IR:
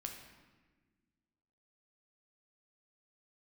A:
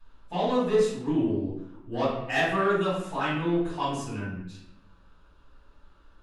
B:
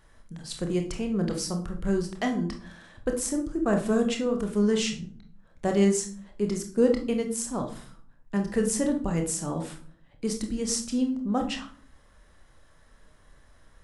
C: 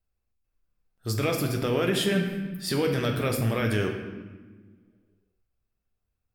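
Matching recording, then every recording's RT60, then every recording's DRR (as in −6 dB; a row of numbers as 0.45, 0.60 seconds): C; 0.85, 0.50, 1.4 seconds; −12.5, 3.5, 2.0 decibels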